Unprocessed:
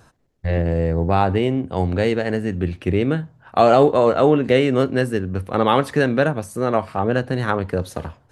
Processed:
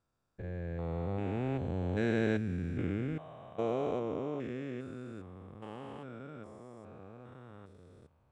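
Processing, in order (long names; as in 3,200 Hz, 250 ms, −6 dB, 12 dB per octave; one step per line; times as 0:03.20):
spectrum averaged block by block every 400 ms
source passing by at 0:02.26, 6 m/s, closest 3.5 metres
formants moved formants −2 semitones
level −8 dB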